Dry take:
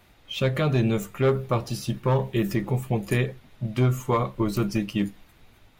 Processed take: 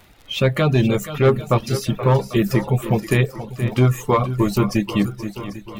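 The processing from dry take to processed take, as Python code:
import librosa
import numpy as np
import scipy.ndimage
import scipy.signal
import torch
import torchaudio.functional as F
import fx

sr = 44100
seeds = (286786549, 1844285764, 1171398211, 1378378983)

y = fx.echo_swing(x, sr, ms=793, ratio=1.5, feedback_pct=41, wet_db=-11.5)
y = fx.dmg_crackle(y, sr, seeds[0], per_s=37.0, level_db=-38.0)
y = fx.dereverb_blind(y, sr, rt60_s=0.51)
y = F.gain(torch.from_numpy(y), 6.5).numpy()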